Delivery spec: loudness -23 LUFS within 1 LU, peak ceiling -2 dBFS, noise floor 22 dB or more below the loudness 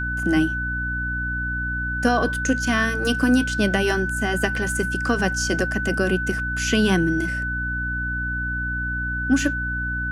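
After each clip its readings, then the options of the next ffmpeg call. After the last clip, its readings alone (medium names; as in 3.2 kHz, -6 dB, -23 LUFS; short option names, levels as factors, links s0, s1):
hum 60 Hz; highest harmonic 300 Hz; hum level -27 dBFS; steady tone 1.5 kHz; tone level -25 dBFS; loudness -22.5 LUFS; peak level -5.0 dBFS; loudness target -23.0 LUFS
-> -af "bandreject=f=60:t=h:w=4,bandreject=f=120:t=h:w=4,bandreject=f=180:t=h:w=4,bandreject=f=240:t=h:w=4,bandreject=f=300:t=h:w=4"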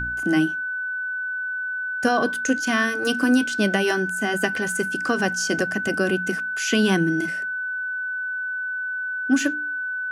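hum not found; steady tone 1.5 kHz; tone level -25 dBFS
-> -af "bandreject=f=1500:w=30"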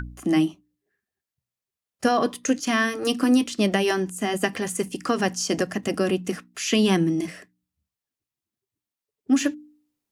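steady tone not found; loudness -24.0 LUFS; peak level -6.5 dBFS; loudness target -23.0 LUFS
-> -af "volume=1.12"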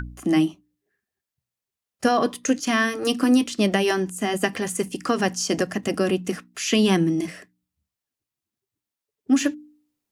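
loudness -23.0 LUFS; peak level -5.5 dBFS; noise floor -88 dBFS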